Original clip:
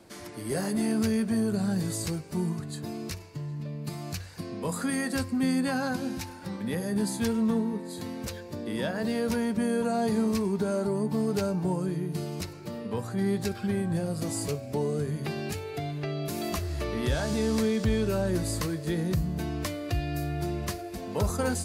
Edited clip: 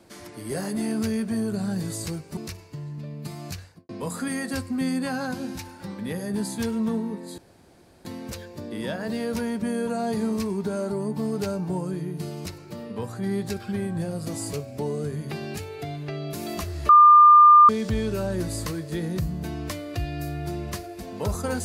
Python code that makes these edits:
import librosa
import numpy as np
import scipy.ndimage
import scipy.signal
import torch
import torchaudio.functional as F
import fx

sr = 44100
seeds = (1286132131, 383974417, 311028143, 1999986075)

y = fx.studio_fade_out(x, sr, start_s=4.18, length_s=0.33)
y = fx.edit(y, sr, fx.cut(start_s=2.37, length_s=0.62),
    fx.insert_room_tone(at_s=8.0, length_s=0.67),
    fx.bleep(start_s=16.84, length_s=0.8, hz=1200.0, db=-8.5), tone=tone)